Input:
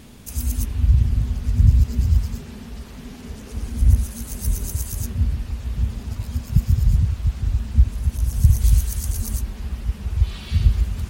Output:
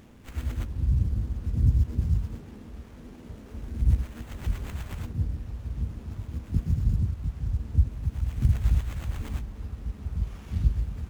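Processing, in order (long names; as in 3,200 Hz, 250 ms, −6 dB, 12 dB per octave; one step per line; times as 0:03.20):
pitch-shifted copies added +5 semitones −7 dB, +12 semitones −13 dB
dynamic equaliser 2,700 Hz, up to −5 dB, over −49 dBFS, Q 0.78
windowed peak hold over 9 samples
level −8.5 dB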